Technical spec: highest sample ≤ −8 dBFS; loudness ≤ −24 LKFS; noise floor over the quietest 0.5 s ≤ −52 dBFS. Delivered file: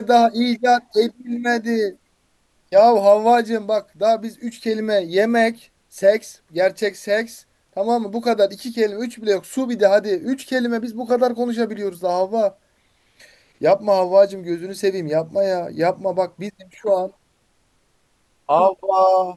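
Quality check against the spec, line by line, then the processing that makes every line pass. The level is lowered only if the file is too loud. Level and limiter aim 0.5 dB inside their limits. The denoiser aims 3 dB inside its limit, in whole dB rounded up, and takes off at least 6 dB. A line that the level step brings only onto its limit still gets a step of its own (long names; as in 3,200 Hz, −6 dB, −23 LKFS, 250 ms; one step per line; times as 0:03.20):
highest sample −3.0 dBFS: out of spec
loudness −19.5 LKFS: out of spec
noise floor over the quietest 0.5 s −63 dBFS: in spec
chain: level −5 dB
brickwall limiter −8.5 dBFS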